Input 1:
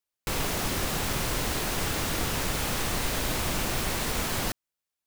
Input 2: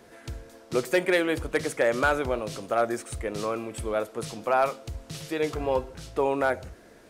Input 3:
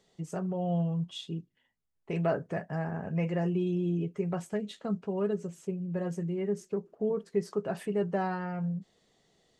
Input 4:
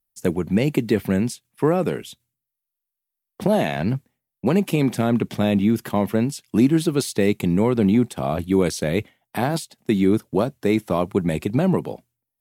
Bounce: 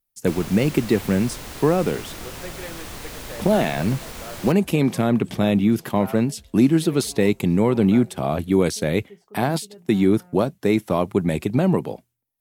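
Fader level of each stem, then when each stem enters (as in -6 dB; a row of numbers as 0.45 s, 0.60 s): -7.0 dB, -14.5 dB, -16.5 dB, +0.5 dB; 0.00 s, 1.50 s, 1.75 s, 0.00 s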